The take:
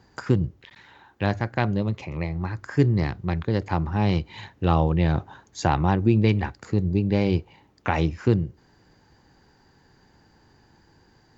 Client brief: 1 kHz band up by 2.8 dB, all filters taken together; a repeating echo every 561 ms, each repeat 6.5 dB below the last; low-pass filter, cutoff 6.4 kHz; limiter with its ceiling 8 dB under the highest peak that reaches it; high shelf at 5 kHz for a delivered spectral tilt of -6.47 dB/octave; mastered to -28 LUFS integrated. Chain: low-pass 6.4 kHz; peaking EQ 1 kHz +4 dB; treble shelf 5 kHz -7 dB; peak limiter -11.5 dBFS; feedback delay 561 ms, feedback 47%, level -6.5 dB; trim -2.5 dB

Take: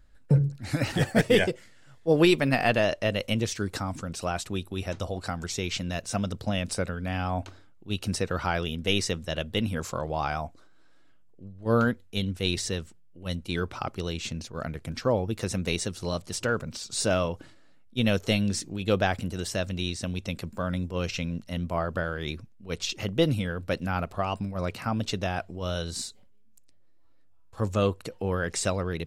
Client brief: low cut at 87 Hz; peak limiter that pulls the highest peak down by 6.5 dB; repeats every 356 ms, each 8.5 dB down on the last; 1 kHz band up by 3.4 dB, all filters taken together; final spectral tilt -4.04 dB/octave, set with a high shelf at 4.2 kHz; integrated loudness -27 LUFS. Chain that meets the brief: high-pass 87 Hz; peaking EQ 1 kHz +4.5 dB; treble shelf 4.2 kHz +6.5 dB; peak limiter -12 dBFS; feedback delay 356 ms, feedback 38%, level -8.5 dB; trim +1 dB

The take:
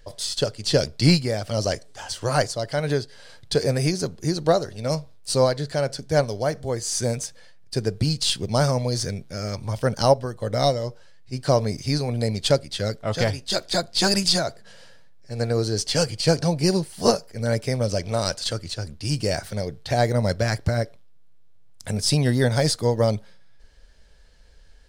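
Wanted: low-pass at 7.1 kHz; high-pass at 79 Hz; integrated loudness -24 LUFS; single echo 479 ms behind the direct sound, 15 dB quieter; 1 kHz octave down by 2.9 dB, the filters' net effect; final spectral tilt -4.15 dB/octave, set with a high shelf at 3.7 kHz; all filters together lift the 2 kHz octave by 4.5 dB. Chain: high-pass 79 Hz; low-pass 7.1 kHz; peaking EQ 1 kHz -6.5 dB; peaking EQ 2 kHz +7 dB; treble shelf 3.7 kHz +4.5 dB; delay 479 ms -15 dB; trim -1 dB

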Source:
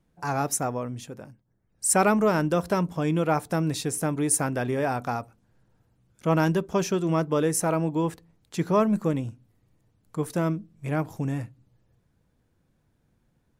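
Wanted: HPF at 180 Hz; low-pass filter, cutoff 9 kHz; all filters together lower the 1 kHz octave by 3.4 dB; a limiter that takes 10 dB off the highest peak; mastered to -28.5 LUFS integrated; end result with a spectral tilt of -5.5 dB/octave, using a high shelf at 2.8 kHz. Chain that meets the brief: high-pass 180 Hz; low-pass 9 kHz; peaking EQ 1 kHz -4 dB; treble shelf 2.8 kHz -4.5 dB; trim +3 dB; peak limiter -16.5 dBFS

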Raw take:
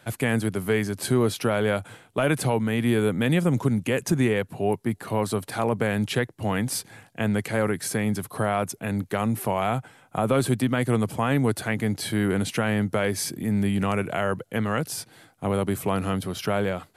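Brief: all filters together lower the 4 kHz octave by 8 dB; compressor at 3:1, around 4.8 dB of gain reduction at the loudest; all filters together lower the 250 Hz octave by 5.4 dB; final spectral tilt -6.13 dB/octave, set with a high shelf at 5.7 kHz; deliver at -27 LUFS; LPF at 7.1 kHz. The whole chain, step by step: low-pass 7.1 kHz; peaking EQ 250 Hz -7 dB; peaking EQ 4 kHz -9 dB; treble shelf 5.7 kHz -4.5 dB; compression 3:1, threshold -26 dBFS; trim +4.5 dB

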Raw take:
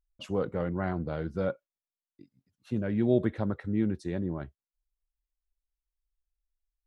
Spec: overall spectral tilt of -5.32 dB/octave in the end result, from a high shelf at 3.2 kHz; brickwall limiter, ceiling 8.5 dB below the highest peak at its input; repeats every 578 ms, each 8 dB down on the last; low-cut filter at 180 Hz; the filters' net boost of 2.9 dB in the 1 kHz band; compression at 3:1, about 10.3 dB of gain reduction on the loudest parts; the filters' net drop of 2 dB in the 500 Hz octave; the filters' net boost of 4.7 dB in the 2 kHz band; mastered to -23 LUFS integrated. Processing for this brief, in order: high-pass 180 Hz; peaking EQ 500 Hz -3.5 dB; peaking EQ 1 kHz +4 dB; peaking EQ 2 kHz +6 dB; treble shelf 3.2 kHz -3.5 dB; compression 3:1, threshold -35 dBFS; peak limiter -32.5 dBFS; feedback delay 578 ms, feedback 40%, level -8 dB; trim +20.5 dB

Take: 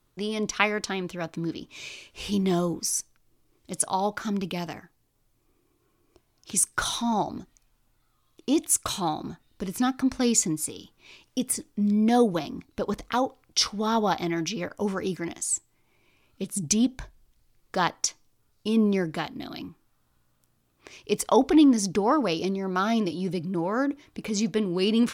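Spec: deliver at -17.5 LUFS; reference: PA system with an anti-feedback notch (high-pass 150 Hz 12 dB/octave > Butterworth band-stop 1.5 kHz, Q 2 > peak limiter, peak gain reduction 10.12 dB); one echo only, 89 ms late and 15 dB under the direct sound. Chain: high-pass 150 Hz 12 dB/octave; Butterworth band-stop 1.5 kHz, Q 2; delay 89 ms -15 dB; trim +11.5 dB; peak limiter -6 dBFS

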